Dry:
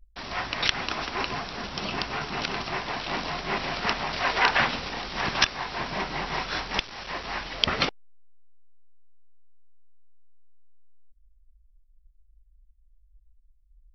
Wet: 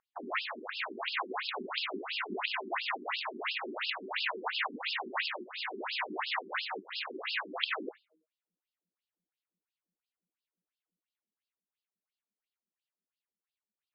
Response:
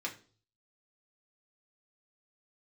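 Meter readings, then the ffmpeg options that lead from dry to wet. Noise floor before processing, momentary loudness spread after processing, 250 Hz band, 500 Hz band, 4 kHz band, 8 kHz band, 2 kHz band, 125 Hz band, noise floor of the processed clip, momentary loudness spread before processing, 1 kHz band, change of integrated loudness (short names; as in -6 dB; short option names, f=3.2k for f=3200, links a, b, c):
-60 dBFS, 4 LU, -9.0 dB, -7.0 dB, -7.5 dB, n/a, -7.0 dB, under -25 dB, under -85 dBFS, 9 LU, -8.5 dB, -7.5 dB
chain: -filter_complex "[0:a]lowshelf=f=430:g=-7,bandreject=f=157.6:t=h:w=4,bandreject=f=315.2:t=h:w=4,bandreject=f=472.8:t=h:w=4,bandreject=f=630.4:t=h:w=4,volume=18.5dB,asoftclip=hard,volume=-18.5dB,acompressor=threshold=-34dB:ratio=6,equalizer=f=130:w=0.42:g=2.5,asplit=2[a][b];[1:a]atrim=start_sample=2205,asetrate=48510,aresample=44100[c];[b][c]afir=irnorm=-1:irlink=0,volume=-9dB[d];[a][d]amix=inputs=2:normalize=0,asoftclip=type=tanh:threshold=-20dB,afftfilt=real='re*between(b*sr/1024,280*pow(3800/280,0.5+0.5*sin(2*PI*2.9*pts/sr))/1.41,280*pow(3800/280,0.5+0.5*sin(2*PI*2.9*pts/sr))*1.41)':imag='im*between(b*sr/1024,280*pow(3800/280,0.5+0.5*sin(2*PI*2.9*pts/sr))/1.41,280*pow(3800/280,0.5+0.5*sin(2*PI*2.9*pts/sr))*1.41)':win_size=1024:overlap=0.75,volume=7dB"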